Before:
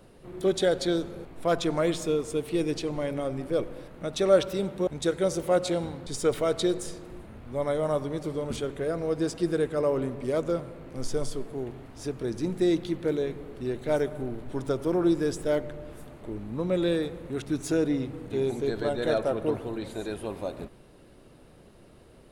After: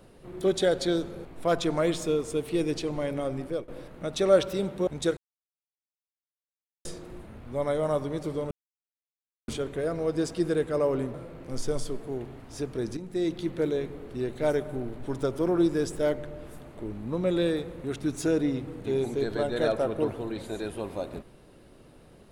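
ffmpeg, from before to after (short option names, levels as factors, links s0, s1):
-filter_complex "[0:a]asplit=7[s0][s1][s2][s3][s4][s5][s6];[s0]atrim=end=3.68,asetpts=PTS-STARTPTS,afade=t=out:st=3.33:d=0.35:c=qsin:silence=0.105925[s7];[s1]atrim=start=3.68:end=5.17,asetpts=PTS-STARTPTS,afade=t=in:d=0.004:c=hsin:silence=0.105925,afade=t=out:st=1.486:d=0.004:c=hsin[s8];[s2]atrim=start=5.17:end=6.85,asetpts=PTS-STARTPTS,volume=0[s9];[s3]atrim=start=6.85:end=8.51,asetpts=PTS-STARTPTS,afade=t=in:d=0.004:c=hsin,afade=t=out:st=1.656:d=0.004:c=hsin,apad=pad_dur=0.97[s10];[s4]atrim=start=8.51:end=10.172,asetpts=PTS-STARTPTS,afade=t=in:d=0.004:c=hsin[s11];[s5]atrim=start=10.598:end=12.43,asetpts=PTS-STARTPTS,afade=t=out:st=1.828:d=0.004:c=hsin:silence=0.251189[s12];[s6]atrim=start=12.43,asetpts=PTS-STARTPTS,afade=t=in:d=0.54:silence=0.251189[s13];[s7][s8][s9][s10][s11]concat=n=5:v=0:a=1[s14];[s12][s13]concat=n=2:v=0:a=1[s15];[s14][s15]acrossfade=d=0.004:c1=hsin:c2=hsin"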